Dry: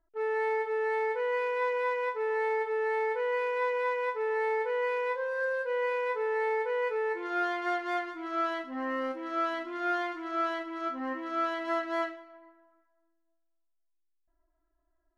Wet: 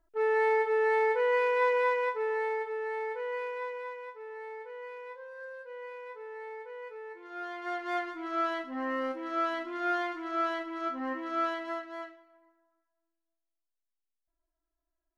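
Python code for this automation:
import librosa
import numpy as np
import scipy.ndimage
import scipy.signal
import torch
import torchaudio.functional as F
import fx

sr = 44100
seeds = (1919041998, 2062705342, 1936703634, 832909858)

y = fx.gain(x, sr, db=fx.line((1.79, 3.5), (2.81, -5.0), (3.44, -5.0), (4.14, -13.0), (7.22, -13.0), (7.99, 0.0), (11.49, 0.0), (11.92, -10.0)))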